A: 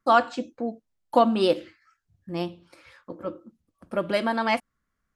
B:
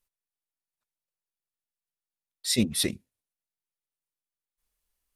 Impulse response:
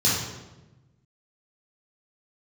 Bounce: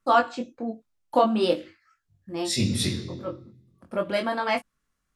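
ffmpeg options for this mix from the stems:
-filter_complex "[0:a]volume=2dB[a];[1:a]lowpass=9.1k,volume=2.5dB,asplit=2[b][c];[c]volume=-19dB[d];[2:a]atrim=start_sample=2205[e];[d][e]afir=irnorm=-1:irlink=0[f];[a][b][f]amix=inputs=3:normalize=0,flanger=delay=20:depth=3.6:speed=0.44"

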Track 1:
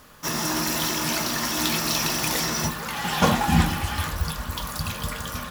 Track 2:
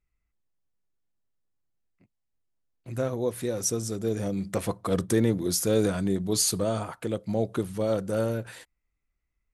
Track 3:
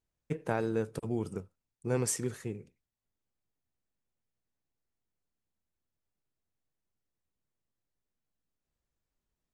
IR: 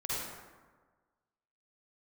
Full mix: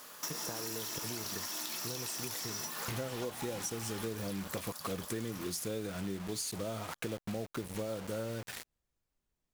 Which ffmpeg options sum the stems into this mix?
-filter_complex "[0:a]highpass=120,bass=f=250:g=-12,treble=f=4k:g=7,acompressor=threshold=-29dB:ratio=6,volume=-2.5dB,asplit=2[a][b];[b]volume=-17dB[c];[1:a]equalizer=f=2.4k:w=1.1:g=4.5,dynaudnorm=f=100:g=3:m=15.5dB,acrusher=bits=3:mix=0:aa=0.000001,volume=-10dB[d];[2:a]acompressor=threshold=-33dB:ratio=6,volume=1dB[e];[c]aecho=0:1:427|854|1281|1708:1|0.31|0.0961|0.0298[f];[a][d][e][f]amix=inputs=4:normalize=0,acompressor=threshold=-36dB:ratio=6"

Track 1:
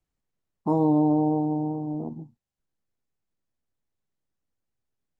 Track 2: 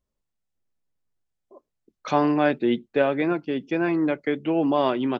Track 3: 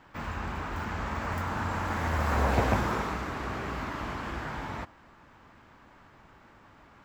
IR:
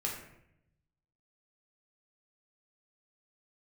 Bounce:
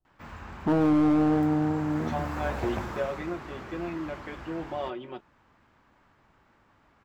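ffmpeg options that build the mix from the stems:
-filter_complex "[0:a]lowpass=1k,volume=2dB[a];[1:a]aecho=1:1:5.5:0.99,volume=-16dB,asplit=2[b][c];[c]volume=-14.5dB[d];[2:a]adelay=50,volume=-7.5dB[e];[3:a]atrim=start_sample=2205[f];[d][f]afir=irnorm=-1:irlink=0[g];[a][b][e][g]amix=inputs=4:normalize=0,asoftclip=type=hard:threshold=-18dB"

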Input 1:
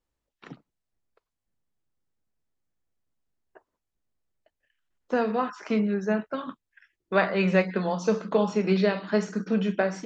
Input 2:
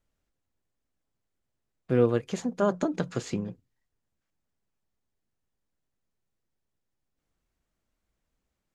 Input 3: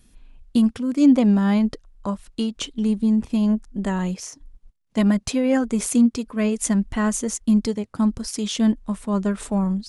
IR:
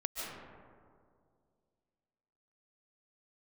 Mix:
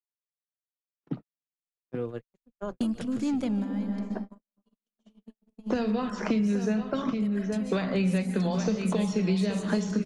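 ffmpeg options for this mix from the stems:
-filter_complex "[0:a]acrossover=split=160|3000[a][b][c];[b]acompressor=threshold=-36dB:ratio=5[d];[a][d][c]amix=inputs=3:normalize=0,tiltshelf=f=1.2k:g=7,dynaudnorm=f=140:g=9:m=8.5dB,adelay=600,volume=2.5dB,asplit=3[e][f][g];[f]volume=-21dB[h];[g]volume=-9.5dB[i];[1:a]acontrast=22,volume=-14.5dB,asplit=3[j][k][l];[k]volume=-15dB[m];[2:a]asoftclip=type=tanh:threshold=-11.5dB,adelay=2250,volume=-6.5dB,asplit=2[n][o];[o]volume=-10.5dB[p];[l]apad=whole_len=535365[q];[n][q]sidechaingate=range=-25dB:threshold=-59dB:ratio=16:detection=peak[r];[3:a]atrim=start_sample=2205[s];[h][p]amix=inputs=2:normalize=0[t];[t][s]afir=irnorm=-1:irlink=0[u];[i][m]amix=inputs=2:normalize=0,aecho=0:1:823:1[v];[e][j][r][u][v]amix=inputs=5:normalize=0,agate=range=-60dB:threshold=-33dB:ratio=16:detection=peak,acrossover=split=130|2000[w][x][y];[w]acompressor=threshold=-40dB:ratio=4[z];[x]acompressor=threshold=-27dB:ratio=4[aa];[y]acompressor=threshold=-40dB:ratio=4[ab];[z][aa][ab]amix=inputs=3:normalize=0"

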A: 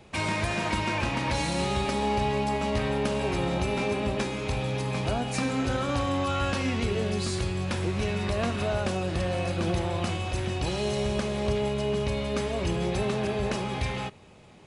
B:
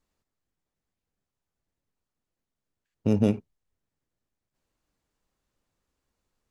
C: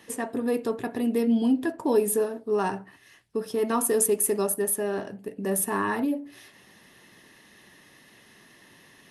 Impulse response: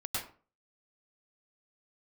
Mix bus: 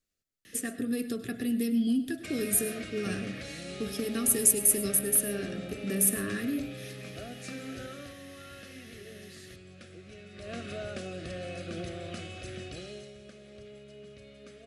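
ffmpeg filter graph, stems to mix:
-filter_complex "[0:a]highpass=f=160:p=1,adelay=2100,volume=-1dB,afade=t=out:st=7.81:d=0.36:silence=0.446684,afade=t=in:st=10.33:d=0.26:silence=0.316228,afade=t=out:st=12.61:d=0.51:silence=0.251189[a];[1:a]highshelf=f=2.4k:g=8.5,acompressor=threshold=-27dB:ratio=6,volume=-8.5dB[b];[2:a]equalizer=f=640:w=0.61:g=-11,acrossover=split=220|3000[c][d][e];[d]acompressor=threshold=-36dB:ratio=6[f];[c][f][e]amix=inputs=3:normalize=0,adelay=450,volume=2dB,asplit=2[g][h];[h]volume=-14dB[i];[3:a]atrim=start_sample=2205[j];[i][j]afir=irnorm=-1:irlink=0[k];[a][b][g][k]amix=inputs=4:normalize=0,asuperstop=centerf=930:order=4:qfactor=1.7"

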